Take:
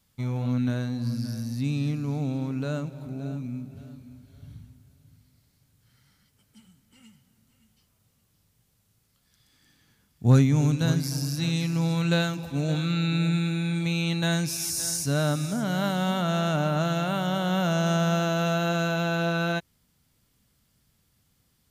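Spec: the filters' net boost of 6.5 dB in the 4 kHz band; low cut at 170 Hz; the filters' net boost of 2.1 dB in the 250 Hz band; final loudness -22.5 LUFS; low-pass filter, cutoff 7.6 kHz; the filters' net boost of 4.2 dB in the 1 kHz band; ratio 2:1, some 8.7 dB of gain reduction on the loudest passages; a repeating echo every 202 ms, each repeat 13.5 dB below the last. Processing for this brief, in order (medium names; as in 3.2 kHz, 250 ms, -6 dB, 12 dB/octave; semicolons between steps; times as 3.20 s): high-pass 170 Hz; low-pass 7.6 kHz; peaking EQ 250 Hz +5.5 dB; peaking EQ 1 kHz +5.5 dB; peaking EQ 4 kHz +7.5 dB; compression 2:1, threshold -29 dBFS; feedback delay 202 ms, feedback 21%, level -13.5 dB; trim +6.5 dB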